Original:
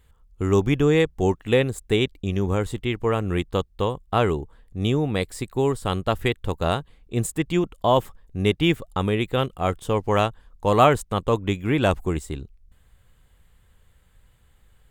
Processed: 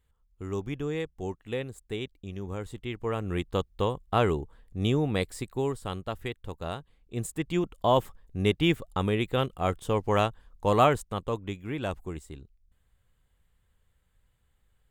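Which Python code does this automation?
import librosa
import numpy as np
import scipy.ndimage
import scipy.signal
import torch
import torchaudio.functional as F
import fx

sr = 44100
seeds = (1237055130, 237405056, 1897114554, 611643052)

y = fx.gain(x, sr, db=fx.line((2.41, -13.5), (3.7, -3.5), (5.22, -3.5), (6.17, -12.0), (6.76, -12.0), (7.78, -4.0), (10.7, -4.0), (11.61, -12.0)))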